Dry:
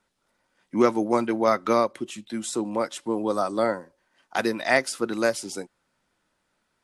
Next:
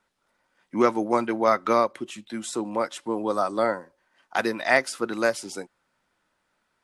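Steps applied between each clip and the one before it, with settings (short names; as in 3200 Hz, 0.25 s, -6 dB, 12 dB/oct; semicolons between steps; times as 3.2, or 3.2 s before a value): bell 1300 Hz +5 dB 2.7 oct; gain -3 dB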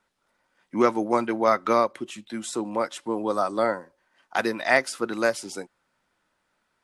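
nothing audible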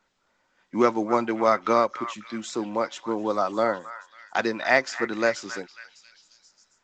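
delay with a stepping band-pass 0.271 s, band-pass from 1400 Hz, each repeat 0.7 oct, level -9 dB; µ-law 128 kbps 16000 Hz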